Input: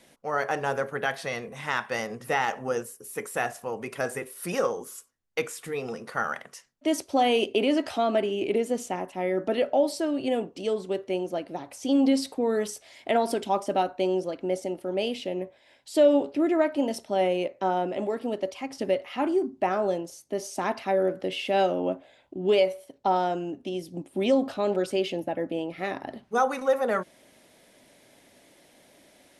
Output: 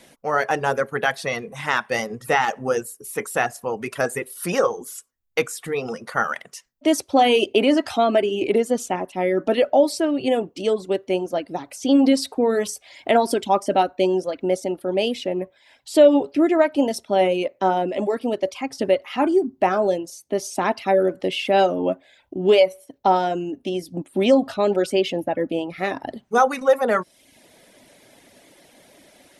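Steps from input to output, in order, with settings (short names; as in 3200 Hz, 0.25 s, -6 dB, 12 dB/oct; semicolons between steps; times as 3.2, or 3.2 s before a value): reverb removal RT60 0.61 s; gain +7 dB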